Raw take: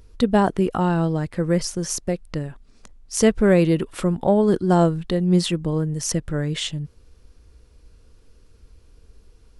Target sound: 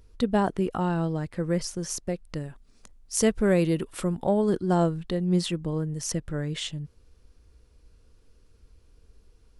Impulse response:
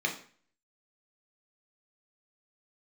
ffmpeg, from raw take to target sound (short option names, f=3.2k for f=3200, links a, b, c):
-filter_complex "[0:a]asettb=1/sr,asplit=3[a][b][c];[a]atrim=end=2.294[d];[b]atrim=start=2.29:end=4.5,asetpts=PTS-STARTPTS,afade=t=in:d=0.004:c=qsin,afade=t=out:st=2.206:d=0.004:c=qsin,highshelf=f=7.5k:g=8[e];[c]atrim=start=4.496[f];[d][e]acrossfade=d=0.004:c1=hsin:c2=qsin[g];[g][f]acrossfade=d=0.004:c1=qsin:c2=hsin,volume=-6dB"